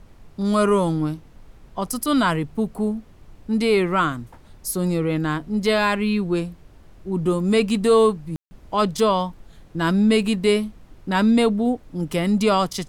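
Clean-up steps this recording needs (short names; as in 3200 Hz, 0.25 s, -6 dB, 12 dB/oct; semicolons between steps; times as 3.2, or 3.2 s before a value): room tone fill 8.36–8.51; noise print and reduce 19 dB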